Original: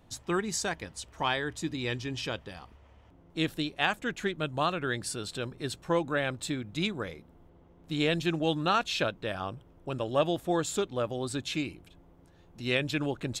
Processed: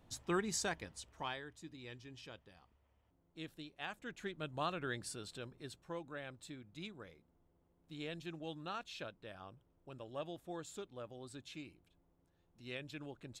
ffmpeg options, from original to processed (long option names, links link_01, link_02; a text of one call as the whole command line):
ffmpeg -i in.wav -af "volume=3.5dB,afade=type=out:start_time=0.64:duration=0.86:silence=0.237137,afade=type=in:start_time=3.77:duration=1.04:silence=0.334965,afade=type=out:start_time=4.81:duration=1.12:silence=0.375837" out.wav